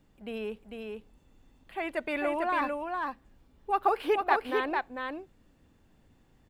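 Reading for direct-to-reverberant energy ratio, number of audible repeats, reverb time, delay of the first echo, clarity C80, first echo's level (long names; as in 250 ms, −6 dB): no reverb audible, 1, no reverb audible, 448 ms, no reverb audible, −4.0 dB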